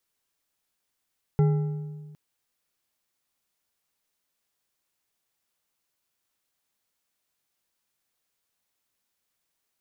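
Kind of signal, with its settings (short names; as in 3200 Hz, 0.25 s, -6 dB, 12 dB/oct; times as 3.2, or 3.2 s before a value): metal hit bar, length 0.76 s, lowest mode 151 Hz, decay 1.63 s, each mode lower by 9 dB, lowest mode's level -16 dB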